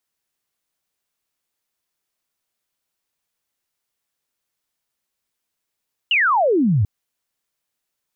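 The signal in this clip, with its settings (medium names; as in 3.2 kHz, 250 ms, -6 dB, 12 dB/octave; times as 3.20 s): laser zap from 3 kHz, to 91 Hz, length 0.74 s sine, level -13.5 dB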